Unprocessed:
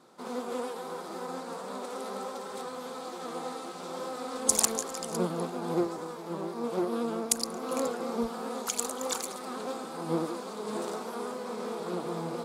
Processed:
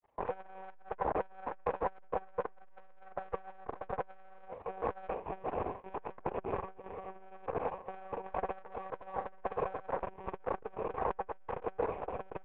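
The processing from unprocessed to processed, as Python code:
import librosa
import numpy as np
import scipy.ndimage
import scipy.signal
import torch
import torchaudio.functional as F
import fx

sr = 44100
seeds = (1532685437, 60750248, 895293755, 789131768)

y = fx.rattle_buzz(x, sr, strikes_db=-44.0, level_db=-25.0)
y = fx.highpass(y, sr, hz=150.0, slope=6)
y = fx.over_compress(y, sr, threshold_db=-38.0, ratio=-0.5)
y = fx.fuzz(y, sr, gain_db=40.0, gate_db=-48.0)
y = fx.ladder_lowpass(y, sr, hz=1300.0, resonance_pct=70)
y = fx.fixed_phaser(y, sr, hz=540.0, stages=4)
y = fx.room_early_taps(y, sr, ms=(46, 64), db=(-5.5, -14.0))
y = fx.lpc_monotone(y, sr, seeds[0], pitch_hz=190.0, order=16)
y = fx.transformer_sat(y, sr, knee_hz=560.0)
y = F.gain(torch.from_numpy(y), -1.5).numpy()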